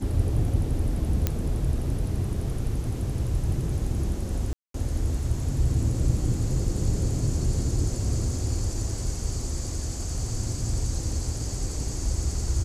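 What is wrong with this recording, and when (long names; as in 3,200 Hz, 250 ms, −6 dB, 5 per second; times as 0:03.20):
0:01.27: click −9 dBFS
0:04.53–0:04.74: drop-out 213 ms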